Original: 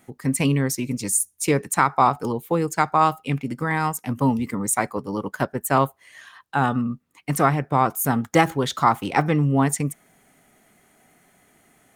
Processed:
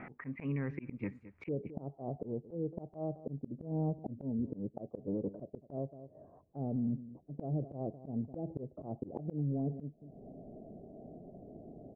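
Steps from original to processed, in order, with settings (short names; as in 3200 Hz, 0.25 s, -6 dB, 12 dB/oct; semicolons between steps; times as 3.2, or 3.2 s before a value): Chebyshev low-pass 2400 Hz, order 5, from 1.47 s 650 Hz; compressor 2:1, threshold -41 dBFS, peak gain reduction 14.5 dB; outdoor echo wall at 37 m, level -25 dB; auto swell 0.467 s; limiter -39.5 dBFS, peak gain reduction 11 dB; gain +12.5 dB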